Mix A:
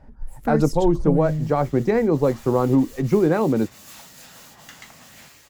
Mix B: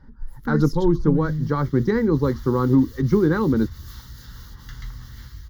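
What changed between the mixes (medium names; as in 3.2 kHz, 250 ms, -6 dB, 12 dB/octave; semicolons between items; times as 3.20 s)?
speech +3.0 dB; second sound: remove high-pass 340 Hz 12 dB/octave; master: add static phaser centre 2.5 kHz, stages 6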